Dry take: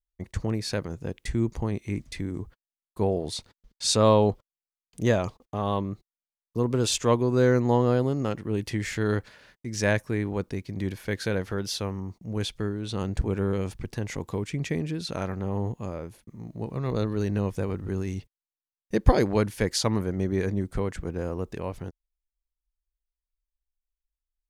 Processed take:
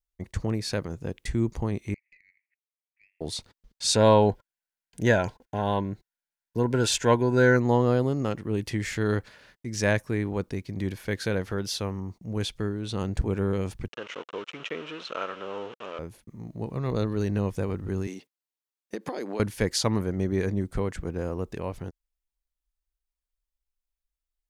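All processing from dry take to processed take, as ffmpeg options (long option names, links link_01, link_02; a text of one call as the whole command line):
ffmpeg -i in.wav -filter_complex "[0:a]asettb=1/sr,asplit=3[link_01][link_02][link_03];[link_01]atrim=end=1.944[link_04];[link_02]atrim=start=1.94:end=3.21,asetpts=PTS-STARTPTS,afade=type=in:duration=0.004:curve=qsin,afade=type=out:start_time=1.266:duration=0.004:curve=qsin,asuperpass=centerf=2200:order=8:qfactor=3.1,acompressor=threshold=-52dB:ratio=16:attack=3.2:release=140:knee=1:detection=peak,aeval=exprs='(tanh(158*val(0)+0.3)-tanh(0.3))/158':channel_layout=same[link_05];[link_03]atrim=start=3.206[link_06];[link_04][link_05]acrossfade=duration=0.004:curve1=hsin:curve2=qsin[link_07];[link_07][link_06]acrossfade=duration=0.004:curve1=qsin:curve2=hsin,asettb=1/sr,asplit=3[link_08][link_09][link_10];[link_08]atrim=end=3.944[link_11];[link_09]atrim=start=3.94:end=7.57,asetpts=PTS-STARTPTS,afade=type=in:duration=0.004:curve=qsin,afade=type=out:start_time=3.626:duration=0.004:curve=qsin,asuperstop=centerf=1200:order=8:qfactor=3.8,equalizer=frequency=1400:width_type=o:width=0.96:gain=10.5[link_12];[link_10]atrim=start=7.566[link_13];[link_11][link_12]acrossfade=duration=0.004:curve1=hsin:curve2=qsin[link_14];[link_14][link_13]acrossfade=duration=0.004:curve1=qsin:curve2=hsin,asettb=1/sr,asplit=3[link_15][link_16][link_17];[link_15]atrim=end=13.884[link_18];[link_16]atrim=start=13.88:end=15.99,asetpts=PTS-STARTPTS,afade=type=in:duration=0.004:curve=qsin,afade=type=out:start_time=2.106:duration=0.004:curve=qsin,aeval=exprs='val(0)*gte(abs(val(0)),0.015)':channel_layout=same,highpass=490,equalizer=frequency=500:width_type=q:width=4:gain=4,equalizer=frequency=770:width_type=q:width=4:gain=-6,equalizer=frequency=1300:width_type=q:width=4:gain=8,equalizer=frequency=2000:width_type=q:width=4:gain=-3,equalizer=frequency=2900:width_type=q:width=4:gain=9,equalizer=frequency=4700:width_type=q:width=4:gain=-10,lowpass=frequency=5100:width=0.5412,lowpass=frequency=5100:width=1.3066[link_19];[link_17]atrim=start=15.986[link_20];[link_18][link_19]acrossfade=duration=0.004:curve1=hsin:curve2=qsin[link_21];[link_21][link_20]acrossfade=duration=0.004:curve1=qsin:curve2=hsin,asettb=1/sr,asplit=3[link_22][link_23][link_24];[link_22]atrim=end=18.074[link_25];[link_23]atrim=start=18.07:end=19.4,asetpts=PTS-STARTPTS,afade=type=in:duration=0.004:curve=qsin,afade=type=out:start_time=1.326:duration=0.004:curve=qsin,highpass=frequency=230:width=0.5412,highpass=frequency=230:width=1.3066,acompressor=threshold=-28dB:ratio=12:attack=3.2:release=140:knee=1:detection=peak[link_26];[link_24]atrim=start=19.396[link_27];[link_25][link_26]acrossfade=duration=0.004:curve1=hsin:curve2=qsin[link_28];[link_28][link_27]acrossfade=duration=0.004:curve1=qsin:curve2=hsin" out.wav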